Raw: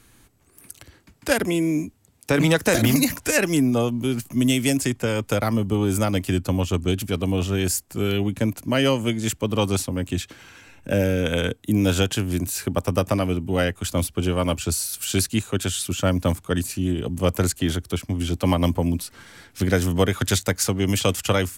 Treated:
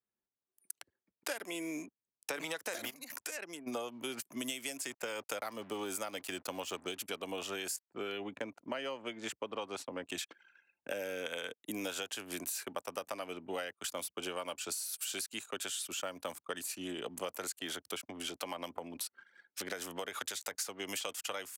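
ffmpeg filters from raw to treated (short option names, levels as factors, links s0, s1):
-filter_complex "[0:a]asplit=3[s0][s1][s2];[s0]afade=t=out:st=2.89:d=0.02[s3];[s1]acompressor=threshold=0.0251:ratio=8:attack=3.2:release=140:knee=1:detection=peak,afade=t=in:st=2.89:d=0.02,afade=t=out:st=3.66:d=0.02[s4];[s2]afade=t=in:st=3.66:d=0.02[s5];[s3][s4][s5]amix=inputs=3:normalize=0,asettb=1/sr,asplit=3[s6][s7][s8];[s6]atrim=end=4.854[s9];[s7]atrim=start=4.85:end=6.97,asetpts=PTS-STARTPTS,afade=t=in:d=0.004:c=qsin,afade=t=out:st=2.116:d=0.004:c=qsin,aeval=exprs='val(0)*gte(abs(val(0)),0.01)':c=same[s10];[s8]atrim=start=6.966[s11];[s9][s10]acrossfade=d=0.004:c1=hsin:c2=qsin[s12];[s12][s11]acrossfade=d=0.004:c1=qsin:c2=hsin,asettb=1/sr,asplit=3[s13][s14][s15];[s13]atrim=end=7.764[s16];[s14]atrim=start=7.76:end=10.09,asetpts=PTS-STARTPTS,afade=t=in:d=0.004:c=qsin,afade=t=out:st=2.326:d=0.004:c=qsin,aemphasis=mode=reproduction:type=75kf[s17];[s15]atrim=start=10.086[s18];[s16][s17]acrossfade=d=0.004:c1=hsin:c2=qsin[s19];[s19][s18]acrossfade=d=0.004:c1=qsin:c2=hsin,asettb=1/sr,asplit=3[s20][s21][s22];[s20]atrim=end=18.074[s23];[s21]atrim=start=18.07:end=20.53,asetpts=PTS-STARTPTS,afade=t=in:d=0.004:c=qsin,afade=t=out:st=2.456:d=0.004:c=qsin,acompressor=threshold=0.0794:ratio=6:attack=3.2:release=140:knee=1:detection=peak[s24];[s22]atrim=start=20.526[s25];[s23][s24]acrossfade=d=0.004:c1=hsin:c2=qsin[s26];[s26][s25]acrossfade=d=0.004:c1=qsin:c2=hsin,anlmdn=0.631,highpass=580,acompressor=threshold=0.0224:ratio=12,volume=0.75"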